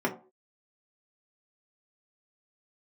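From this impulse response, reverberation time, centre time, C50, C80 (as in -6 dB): no single decay rate, 13 ms, 12.0 dB, 16.5 dB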